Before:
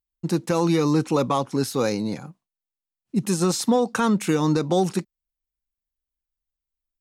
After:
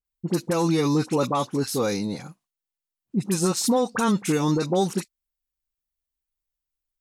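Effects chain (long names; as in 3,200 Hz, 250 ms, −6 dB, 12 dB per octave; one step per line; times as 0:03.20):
pitch vibrato 0.88 Hz 47 cents
high-shelf EQ 5,500 Hz +4.5 dB
all-pass dispersion highs, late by 45 ms, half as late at 1,400 Hz
level −1.5 dB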